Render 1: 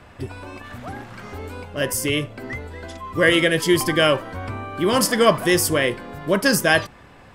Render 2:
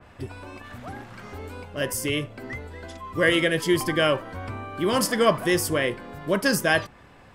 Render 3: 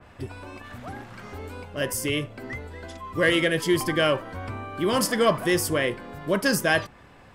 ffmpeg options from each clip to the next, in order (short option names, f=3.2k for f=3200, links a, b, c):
-af "adynamicequalizer=threshold=0.0316:dfrequency=2900:dqfactor=0.7:tfrequency=2900:tqfactor=0.7:attack=5:release=100:ratio=0.375:range=2:mode=cutabove:tftype=highshelf,volume=-4dB"
-af "asoftclip=type=tanh:threshold=-8.5dB"